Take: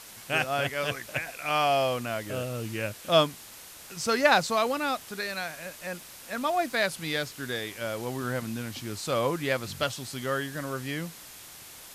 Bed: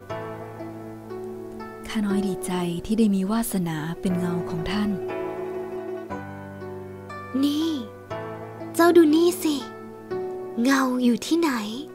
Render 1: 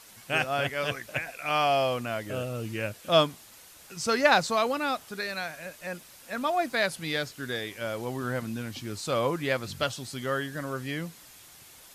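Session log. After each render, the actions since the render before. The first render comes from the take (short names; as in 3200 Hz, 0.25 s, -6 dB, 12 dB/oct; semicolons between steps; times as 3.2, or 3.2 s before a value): denoiser 6 dB, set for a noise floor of -47 dBFS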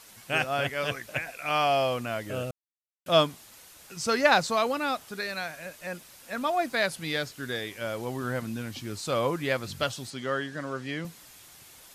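2.51–3.06 mute; 10.1–11.05 BPF 140–6500 Hz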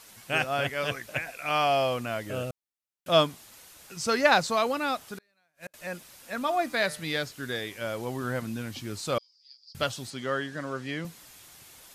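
5.14–5.74 flipped gate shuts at -29 dBFS, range -37 dB; 6.38–7.03 de-hum 150.2 Hz, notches 38; 9.18–9.75 Butterworth band-pass 4900 Hz, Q 7.6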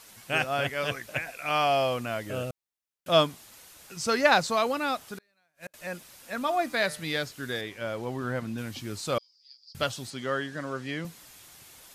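7.61–8.58 LPF 3800 Hz 6 dB/oct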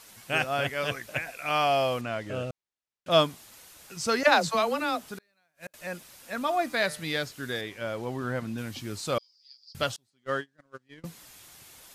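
2.01–3.11 air absorption 65 m; 4.23–5.09 dispersion lows, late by 63 ms, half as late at 390 Hz; 9.96–11.04 gate -31 dBFS, range -33 dB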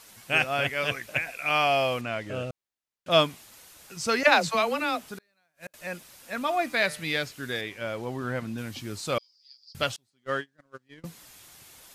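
dynamic EQ 2400 Hz, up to +6 dB, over -45 dBFS, Q 2.2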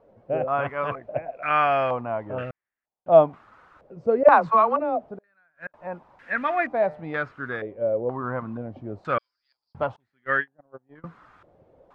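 stepped low-pass 2.1 Hz 550–1800 Hz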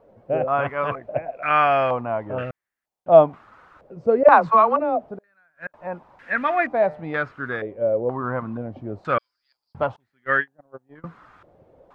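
gain +3 dB; limiter -2 dBFS, peak gain reduction 2.5 dB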